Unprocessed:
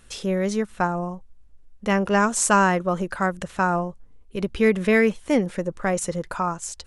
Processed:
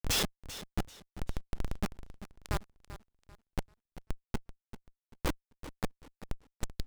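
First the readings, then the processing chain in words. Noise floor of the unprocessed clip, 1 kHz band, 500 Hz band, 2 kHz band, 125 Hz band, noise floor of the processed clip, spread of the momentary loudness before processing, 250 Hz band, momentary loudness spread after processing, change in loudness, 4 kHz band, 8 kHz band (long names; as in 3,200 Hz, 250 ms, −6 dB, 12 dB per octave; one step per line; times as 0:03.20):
−49 dBFS, −22.0 dB, −23.0 dB, −19.5 dB, −11.5 dB, below −85 dBFS, 12 LU, −19.5 dB, 17 LU, −17.0 dB, −2.0 dB, −13.5 dB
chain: gate with flip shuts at −22 dBFS, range −36 dB
comparator with hysteresis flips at −44.5 dBFS
feedback echo with a swinging delay time 388 ms, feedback 31%, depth 82 cents, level −14 dB
level +18 dB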